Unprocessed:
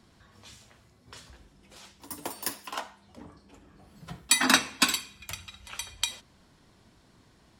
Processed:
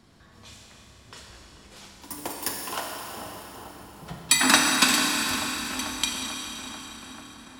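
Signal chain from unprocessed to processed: feedback echo behind a low-pass 441 ms, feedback 71%, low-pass 1.2 kHz, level -10 dB; Schroeder reverb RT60 4 s, combs from 27 ms, DRR 0 dB; trim +2 dB

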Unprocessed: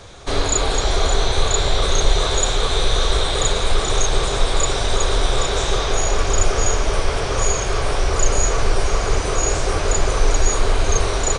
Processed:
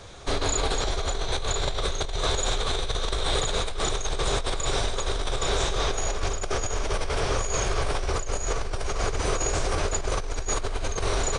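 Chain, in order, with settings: compressor with a negative ratio -19 dBFS, ratio -1; trim -6.5 dB

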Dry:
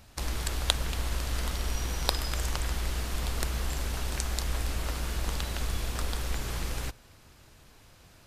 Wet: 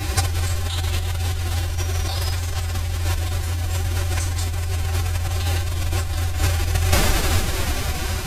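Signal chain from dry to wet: two-slope reverb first 0.23 s, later 4.7 s, from -21 dB, DRR -8 dB; compressor with a negative ratio -29 dBFS, ratio -1; formant-preserving pitch shift +6 st; trim +8 dB

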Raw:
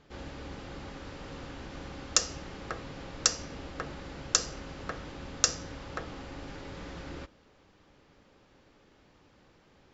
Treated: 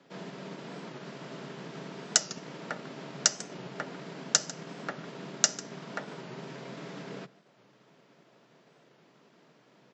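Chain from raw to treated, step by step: delay 147 ms -17 dB; frequency shift +120 Hz; transient shaper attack +1 dB, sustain -4 dB; warped record 45 rpm, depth 100 cents

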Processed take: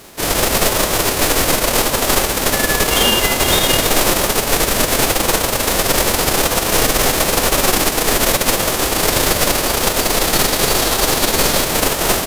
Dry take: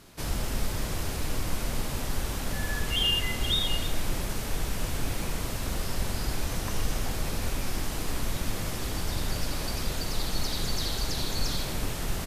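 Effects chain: formants flattened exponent 0.3; peaking EQ 500 Hz +6.5 dB 2.9 oct; in parallel at -9 dB: decimation with a swept rate 24×, swing 60% 0.89 Hz; on the sum: loudness maximiser +10.5 dB; trim -1 dB

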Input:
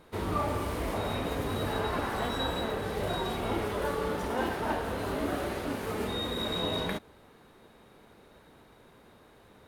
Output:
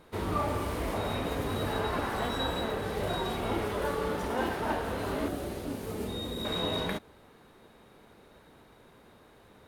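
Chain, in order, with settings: 5.28–6.45 s: peaking EQ 1.5 kHz -9.5 dB 2.5 oct

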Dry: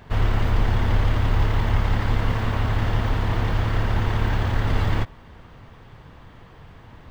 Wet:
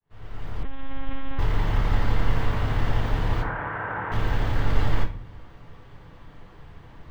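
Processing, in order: fade-in on the opening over 1.75 s; 3.42–4.12 s: cabinet simulation 210–2100 Hz, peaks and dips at 240 Hz -9 dB, 390 Hz -5 dB, 930 Hz +5 dB, 1.5 kHz +9 dB; reverberation RT60 0.45 s, pre-delay 6 ms, DRR 3 dB; 0.63–1.39 s: monotone LPC vocoder at 8 kHz 270 Hz; trim -4.5 dB

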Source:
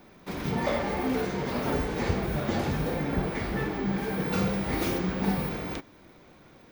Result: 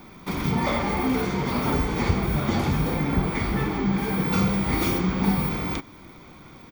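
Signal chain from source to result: comb 0.9 ms, depth 42%; in parallel at -1 dB: compression, threshold -34 dBFS, peak gain reduction 15 dB; on the sum: trim +1.5 dB

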